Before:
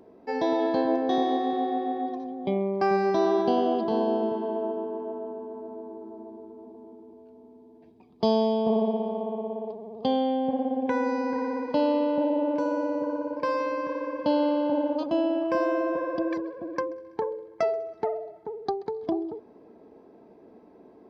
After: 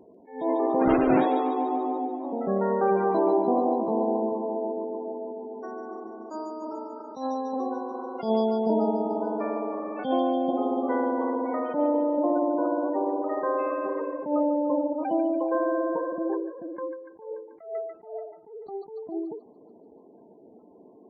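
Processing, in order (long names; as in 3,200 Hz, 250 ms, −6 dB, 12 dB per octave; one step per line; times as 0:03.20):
0:00.81–0:01.21: each half-wave held at its own peak
delay with pitch and tempo change per echo 246 ms, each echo +3 semitones, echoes 3, each echo −6 dB
gate on every frequency bin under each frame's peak −20 dB strong
on a send: delay with a high-pass on its return 145 ms, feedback 60%, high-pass 2,200 Hz, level −6 dB
on the sum: dynamic equaliser 1,700 Hz, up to −4 dB, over −45 dBFS, Q 2
level that may rise only so fast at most 130 dB per second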